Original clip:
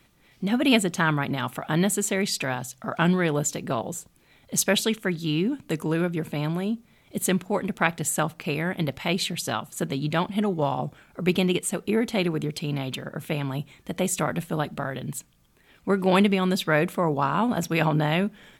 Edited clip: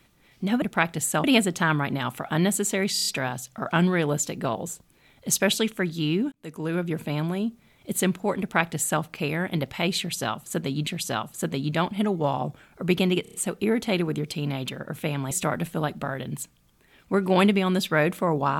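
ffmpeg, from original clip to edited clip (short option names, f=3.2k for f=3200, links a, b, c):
-filter_complex "[0:a]asplit=14[a][b][c][d][e][f][g][h][i][j][k][l][m][n];[a]atrim=end=0.622[o];[b]atrim=start=7.658:end=8.282[p];[c]atrim=start=0.618:end=2.352[q];[d]atrim=start=2.318:end=2.352[r];[e]atrim=start=2.318:end=2.352[s];[f]atrim=start=2.318:end=2.352[t];[g]atrim=start=2.318:end=5.58,asetpts=PTS-STARTPTS,afade=t=out:st=3.258:d=0.004:c=hsin[u];[h]atrim=start=5.58:end=10.132,asetpts=PTS-STARTPTS,afade=t=in:d=0.55[v];[i]atrim=start=9.248:end=11.632[w];[j]atrim=start=11.598:end=11.632[x];[k]atrim=start=11.598:end=11.632[y];[l]atrim=start=11.598:end=11.632[z];[m]atrim=start=11.598:end=13.572[aa];[n]atrim=start=14.068[ab];[o][p]acrossfade=d=0.004:c1=hsin:c2=hsin[ac];[ac][q]acrossfade=d=0.004:c1=hsin:c2=hsin[ad];[ad][r]acrossfade=d=0.004:c1=hsin:c2=hsin[ae];[ae][s]acrossfade=d=0.004:c1=hsin:c2=hsin[af];[af][t]acrossfade=d=0.004:c1=hsin:c2=hsin[ag];[u][v]concat=n=2:v=0:a=1[ah];[ag][ah]acrossfade=d=0.004:c1=hsin:c2=hsin[ai];[ai][w]acrossfade=d=0.004:c1=hsin:c2=hsin[aj];[aj][x]acrossfade=d=0.004:c1=hsin:c2=hsin[ak];[ak][y]acrossfade=d=0.004:c1=hsin:c2=hsin[al];[al][z]acrossfade=d=0.004:c1=hsin:c2=hsin[am];[am][aa]acrossfade=d=0.004:c1=hsin:c2=hsin[an];[an][ab]acrossfade=d=0.004:c1=hsin:c2=hsin"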